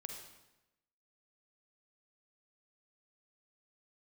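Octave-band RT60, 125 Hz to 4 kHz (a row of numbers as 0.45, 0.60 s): 1.0, 1.0, 1.0, 0.95, 0.90, 0.85 s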